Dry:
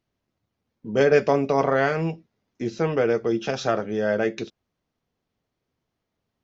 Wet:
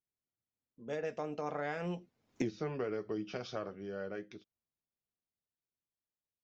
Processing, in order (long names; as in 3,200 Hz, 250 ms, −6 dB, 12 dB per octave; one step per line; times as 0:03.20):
source passing by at 0:02.44, 26 m/s, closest 1.4 metres
downward compressor 12 to 1, threshold −43 dBFS, peak gain reduction 20.5 dB
level +10.5 dB